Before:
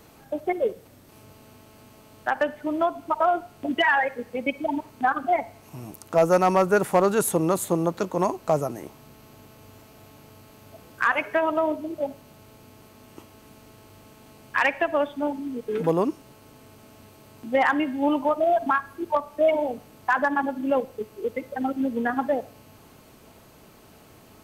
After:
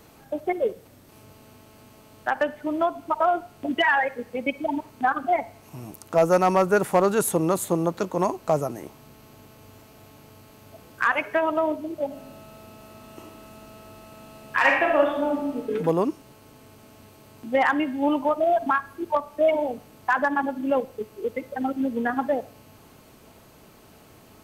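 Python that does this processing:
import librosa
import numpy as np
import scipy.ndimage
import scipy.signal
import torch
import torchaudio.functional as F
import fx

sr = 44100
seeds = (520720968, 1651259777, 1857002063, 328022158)

y = fx.reverb_throw(x, sr, start_s=12.07, length_s=3.55, rt60_s=0.87, drr_db=-0.5)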